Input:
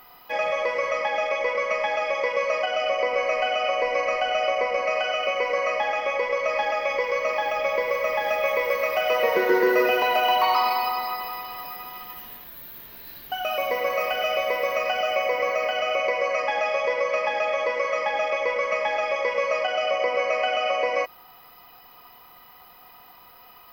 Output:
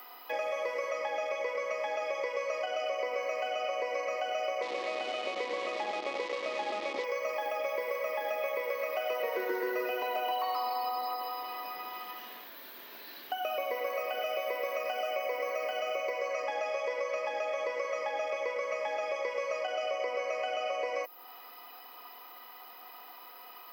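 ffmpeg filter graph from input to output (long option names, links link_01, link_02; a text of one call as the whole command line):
ffmpeg -i in.wav -filter_complex "[0:a]asettb=1/sr,asplit=3[link_01][link_02][link_03];[link_01]atrim=end=4.624[link_04];[link_02]atrim=start=4.62:end=7.04,asetpts=PTS-STARTPTS,afade=type=in:duration=0.004:curve=qsin,afade=type=out:start_time=2.416:duration=0.004:curve=qsin,acrusher=bits=5:dc=4:mix=0:aa=0.000001,highpass=110,equalizer=frequency=350:width_type=q:width=4:gain=5,equalizer=frequency=570:width_type=q:width=4:gain=-6,equalizer=frequency=1500:width_type=q:width=4:gain=-8,lowpass=frequency=4200:width=0.5412,lowpass=frequency=4200:width=1.3066[link_05];[link_03]atrim=start=7.036[link_06];[link_04][link_05]acrossfade=duration=0.004:curve1=hsin:curve2=qsin[link_07];[link_07][link_06]acrossfade=duration=0.004:curve1=qsin:curve2=hsin,asettb=1/sr,asplit=3[link_08][link_09][link_10];[link_08]atrim=end=10.314[link_11];[link_09]atrim=start=10.31:end=11.43,asetpts=PTS-STARTPTS,afade=type=in:duration=0.004:curve=qsin,afade=type=out:start_time=1.116:duration=0.004:curve=qsin,lowshelf=frequency=330:gain=-6.5,aecho=1:1:3.8:0.58,atrim=end_sample=49392[link_12];[link_10]atrim=start=11.426[link_13];[link_11][link_12]acrossfade=duration=0.004:curve1=hsin:curve2=qsin[link_14];[link_14][link_13]acrossfade=duration=0.004:curve1=qsin:curve2=hsin,highpass=frequency=270:width=0.5412,highpass=frequency=270:width=1.3066,highshelf=frequency=11000:gain=4.5,acrossover=split=700|7300[link_15][link_16][link_17];[link_15]acompressor=threshold=-35dB:ratio=4[link_18];[link_16]acompressor=threshold=-40dB:ratio=4[link_19];[link_17]acompressor=threshold=-51dB:ratio=4[link_20];[link_18][link_19][link_20]amix=inputs=3:normalize=0" out.wav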